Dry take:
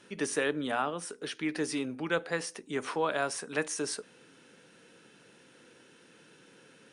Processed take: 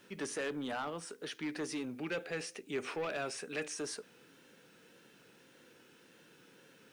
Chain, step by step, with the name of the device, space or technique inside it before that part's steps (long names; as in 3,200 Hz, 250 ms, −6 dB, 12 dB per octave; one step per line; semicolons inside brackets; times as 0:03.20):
compact cassette (soft clipping −28.5 dBFS, distortion −10 dB; low-pass filter 8,400 Hz 12 dB per octave; tape wow and flutter; white noise bed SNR 32 dB)
0:01.96–0:03.74: thirty-one-band graphic EQ 400 Hz +4 dB, 1,000 Hz −7 dB, 2,500 Hz +8 dB
level −3.5 dB